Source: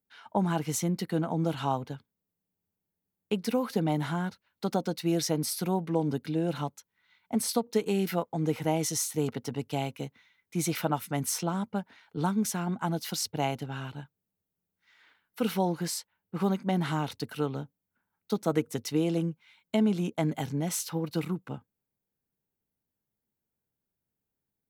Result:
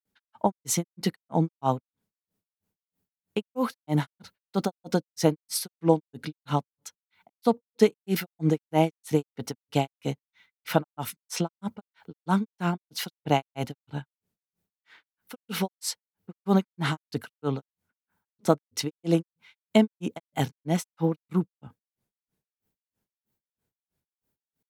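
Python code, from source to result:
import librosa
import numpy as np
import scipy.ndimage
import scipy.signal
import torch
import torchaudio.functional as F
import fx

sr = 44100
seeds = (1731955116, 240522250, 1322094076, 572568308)

y = fx.granulator(x, sr, seeds[0], grain_ms=201.0, per_s=3.1, spray_ms=100.0, spread_st=0)
y = F.gain(torch.from_numpy(y), 8.5).numpy()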